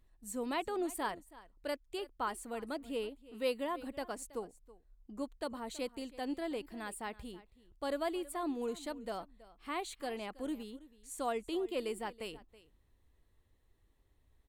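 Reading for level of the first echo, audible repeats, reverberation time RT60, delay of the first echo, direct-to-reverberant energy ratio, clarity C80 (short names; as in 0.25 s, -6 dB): -19.0 dB, 1, none, 0.325 s, none, none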